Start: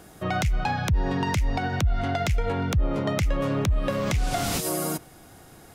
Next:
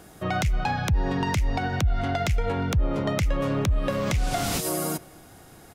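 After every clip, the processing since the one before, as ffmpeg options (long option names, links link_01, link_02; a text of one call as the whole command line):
ffmpeg -i in.wav -filter_complex "[0:a]asplit=2[link_01][link_02];[link_02]adelay=239.1,volume=-25dB,highshelf=frequency=4000:gain=-5.38[link_03];[link_01][link_03]amix=inputs=2:normalize=0" out.wav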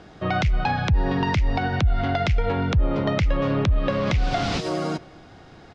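ffmpeg -i in.wav -af "lowpass=frequency=4900:width=0.5412,lowpass=frequency=4900:width=1.3066,volume=3dB" out.wav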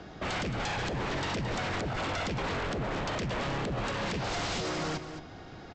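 ffmpeg -i in.wav -filter_complex "[0:a]acrossover=split=120|1300[link_01][link_02][link_03];[link_01]acompressor=threshold=-22dB:ratio=4[link_04];[link_02]acompressor=threshold=-28dB:ratio=4[link_05];[link_03]acompressor=threshold=-32dB:ratio=4[link_06];[link_04][link_05][link_06]amix=inputs=3:normalize=0,aresample=16000,aeval=exprs='0.0398*(abs(mod(val(0)/0.0398+3,4)-2)-1)':channel_layout=same,aresample=44100,aecho=1:1:220:0.266" out.wav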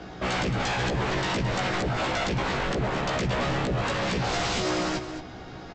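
ffmpeg -i in.wav -filter_complex "[0:a]asplit=2[link_01][link_02];[link_02]adelay=16,volume=-2dB[link_03];[link_01][link_03]amix=inputs=2:normalize=0,volume=3.5dB" out.wav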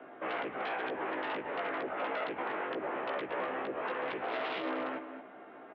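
ffmpeg -i in.wav -filter_complex "[0:a]acrossover=split=500|2600[link_01][link_02][link_03];[link_03]acrusher=bits=4:mix=0:aa=0.000001[link_04];[link_01][link_02][link_04]amix=inputs=3:normalize=0,highpass=frequency=360:width_type=q:width=0.5412,highpass=frequency=360:width_type=q:width=1.307,lowpass=frequency=3400:width_type=q:width=0.5176,lowpass=frequency=3400:width_type=q:width=0.7071,lowpass=frequency=3400:width_type=q:width=1.932,afreqshift=-50,volume=-6dB" out.wav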